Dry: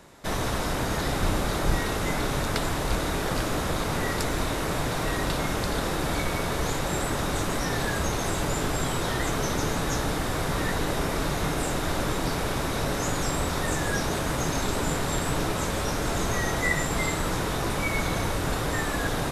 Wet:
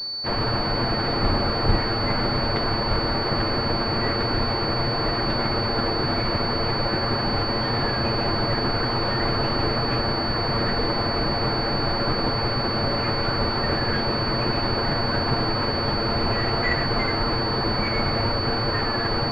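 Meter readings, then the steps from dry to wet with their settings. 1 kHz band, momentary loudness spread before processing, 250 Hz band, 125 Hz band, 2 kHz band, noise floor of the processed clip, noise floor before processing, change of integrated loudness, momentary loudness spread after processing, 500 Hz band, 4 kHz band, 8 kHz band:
+4.5 dB, 1 LU, +3.5 dB, +3.5 dB, +2.0 dB, −25 dBFS, −29 dBFS, +4.5 dB, 1 LU, +4.0 dB, +10.0 dB, below −25 dB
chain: lower of the sound and its delayed copy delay 8.7 ms
switching amplifier with a slow clock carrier 4,500 Hz
level +5.5 dB

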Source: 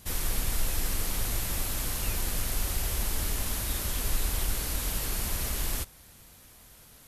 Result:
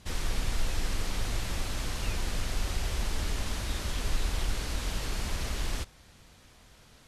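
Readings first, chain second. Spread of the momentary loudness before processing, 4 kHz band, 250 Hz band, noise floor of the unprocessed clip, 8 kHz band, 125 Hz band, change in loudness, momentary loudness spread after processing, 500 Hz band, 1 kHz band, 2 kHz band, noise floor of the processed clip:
1 LU, −1.0 dB, 0.0 dB, −54 dBFS, −8.0 dB, 0.0 dB, −3.5 dB, 2 LU, 0.0 dB, 0.0 dB, 0.0 dB, −57 dBFS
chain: low-pass filter 5,800 Hz 12 dB per octave

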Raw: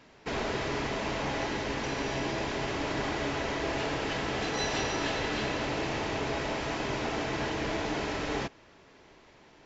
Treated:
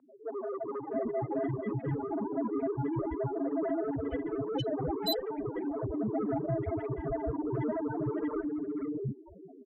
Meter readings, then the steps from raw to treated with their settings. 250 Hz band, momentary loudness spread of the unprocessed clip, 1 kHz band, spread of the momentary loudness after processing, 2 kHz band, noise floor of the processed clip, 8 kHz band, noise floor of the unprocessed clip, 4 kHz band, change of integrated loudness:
+2.5 dB, 2 LU, −6.0 dB, 5 LU, −18.0 dB, −52 dBFS, can't be measured, −57 dBFS, −8.0 dB, −2.0 dB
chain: in parallel at +1 dB: downward compressor, threshold −45 dBFS, peak gain reduction 16.5 dB
on the sum: spectral peaks only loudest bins 1
harmonic generator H 5 −9 dB, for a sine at −33 dBFS
three-band delay without the direct sound mids, highs, lows 480/640 ms, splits 390/1,600 Hz
level +8 dB

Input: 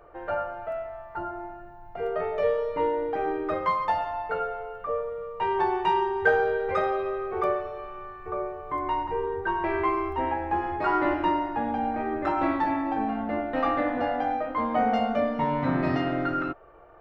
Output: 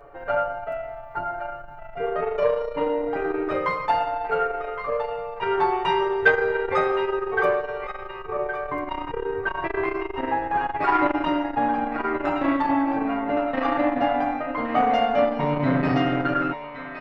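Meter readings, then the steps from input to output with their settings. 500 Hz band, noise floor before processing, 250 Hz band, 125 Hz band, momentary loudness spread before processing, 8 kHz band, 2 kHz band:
+3.5 dB, −44 dBFS, +3.5 dB, +4.0 dB, 10 LU, can't be measured, +5.5 dB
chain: comb filter 7.1 ms, depth 77%
on a send: feedback echo with a band-pass in the loop 1,117 ms, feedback 42%, band-pass 2,000 Hz, level −7 dB
on the sum: saturating transformer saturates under 700 Hz
level +3 dB

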